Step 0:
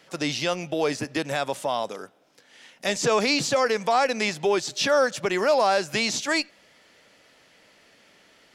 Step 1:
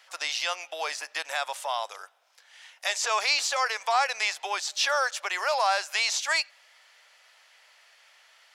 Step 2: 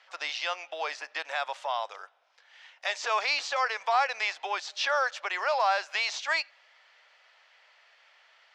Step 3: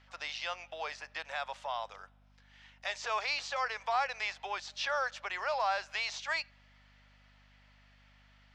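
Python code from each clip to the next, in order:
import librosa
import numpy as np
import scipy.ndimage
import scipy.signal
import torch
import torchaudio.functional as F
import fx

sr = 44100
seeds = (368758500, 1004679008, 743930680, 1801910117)

y1 = scipy.signal.sosfilt(scipy.signal.butter(4, 760.0, 'highpass', fs=sr, output='sos'), x)
y2 = fx.air_absorb(y1, sr, metres=160.0)
y3 = fx.add_hum(y2, sr, base_hz=50, snr_db=26)
y3 = y3 * librosa.db_to_amplitude(-6.0)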